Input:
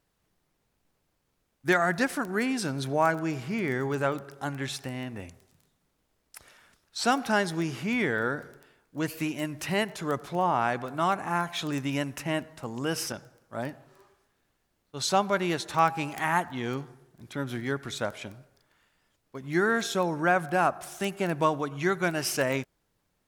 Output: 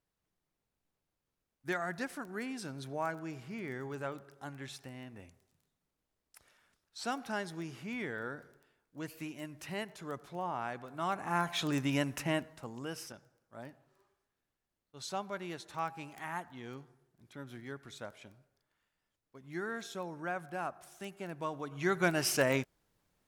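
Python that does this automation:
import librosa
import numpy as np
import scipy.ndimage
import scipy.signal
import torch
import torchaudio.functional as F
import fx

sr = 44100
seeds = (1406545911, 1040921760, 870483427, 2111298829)

y = fx.gain(x, sr, db=fx.line((10.88, -12.0), (11.48, -2.0), (12.25, -2.0), (13.06, -14.0), (21.44, -14.0), (22.02, -2.0)))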